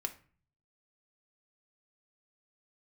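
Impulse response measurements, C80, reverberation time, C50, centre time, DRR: 20.0 dB, 0.40 s, 14.5 dB, 7 ms, 6.0 dB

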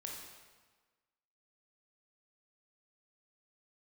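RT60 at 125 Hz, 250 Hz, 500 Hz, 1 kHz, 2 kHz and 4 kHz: 1.3, 1.4, 1.4, 1.4, 1.3, 1.2 seconds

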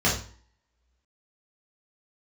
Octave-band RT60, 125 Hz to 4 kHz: 0.50, 0.50, 0.45, 0.50, 0.45, 0.40 seconds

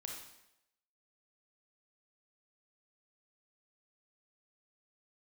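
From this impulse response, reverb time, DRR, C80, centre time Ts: 0.85 s, −0.5 dB, 5.5 dB, 45 ms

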